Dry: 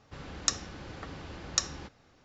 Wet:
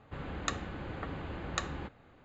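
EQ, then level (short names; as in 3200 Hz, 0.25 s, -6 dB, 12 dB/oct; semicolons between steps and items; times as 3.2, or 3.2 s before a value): running mean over 8 samples; +3.5 dB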